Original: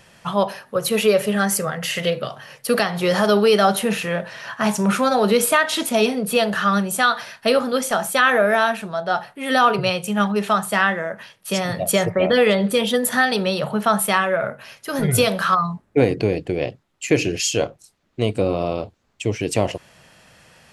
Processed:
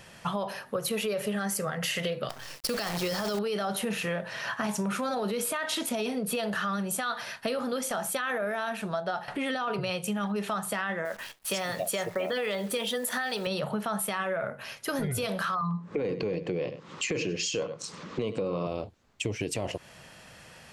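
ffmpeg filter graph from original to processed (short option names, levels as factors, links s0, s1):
-filter_complex "[0:a]asettb=1/sr,asplit=3[s0][s1][s2];[s0]atrim=end=2.294[s3];[s1]atrim=start=2.29:end=3.39,asetpts=PTS-STARTPTS,afade=t=in:d=0.004:c=qsin,afade=t=out:st=1.096:d=0.004:c=qsin,lowpass=11000,equalizer=f=5100:t=o:w=0.49:g=12,acrusher=bits=5:dc=4:mix=0:aa=0.000001[s4];[s2]atrim=start=3.386[s5];[s3][s4]acrossfade=d=0.004:c1=hsin:c2=qsin[s6];[s6][s5]acrossfade=d=0.004:c1=qsin:c2=hsin,asettb=1/sr,asplit=3[s7][s8][s9];[s7]atrim=end=9.284[s10];[s8]atrim=start=9.28:end=9.71,asetpts=PTS-STARTPTS,afade=t=in:d=0.004:c=qsin,afade=t=out:st=0.426:d=0.004:c=qsin,lowpass=7100,acompressor=mode=upward:threshold=0.0891:ratio=2.5:attack=3.2:release=140:knee=2.83:detection=peak[s11];[s9]atrim=start=9.706[s12];[s10][s11]acrossfade=d=0.004:c1=hsin:c2=qsin[s13];[s13][s12]acrossfade=d=0.004:c1=qsin:c2=hsin,asettb=1/sr,asplit=3[s14][s15][s16];[s14]atrim=end=11.054[s17];[s15]atrim=start=11.05:end=13.47,asetpts=PTS-STARTPTS,afade=t=in:d=0.004:c=qsin,afade=t=out:st=2.416:d=0.004:c=qsin,highpass=f=460:p=1,acrusher=bits=8:dc=4:mix=0:aa=0.000001[s18];[s16]atrim=start=13.466[s19];[s17][s18]acrossfade=d=0.004:c1=hsin:c2=qsin[s20];[s20][s19]acrossfade=d=0.004:c1=qsin:c2=hsin,asettb=1/sr,asplit=3[s21][s22][s23];[s21]atrim=end=15.614[s24];[s22]atrim=start=15.61:end=18.67,asetpts=PTS-STARTPTS,afade=t=in:d=0.004:c=qsin,afade=t=out:st=3.056:d=0.004:c=qsin,highpass=150,equalizer=f=170:t=q:w=4:g=9,equalizer=f=490:t=q:w=4:g=7,equalizer=f=700:t=q:w=4:g=-7,equalizer=f=1100:t=q:w=4:g=9,lowpass=f=6800:w=0.5412,lowpass=f=6800:w=1.3066,acompressor=mode=upward:threshold=0.0891:ratio=2.5:attack=3.2:release=140:knee=2.83:detection=peak,aecho=1:1:99:0.126,atrim=end_sample=134946[s25];[s23]atrim=start=18.666[s26];[s24][s25]acrossfade=d=0.004:c1=hsin:c2=qsin[s27];[s27][s26]acrossfade=d=0.004:c1=qsin:c2=hsin,alimiter=limit=0.224:level=0:latency=1:release=10,acompressor=threshold=0.0398:ratio=6"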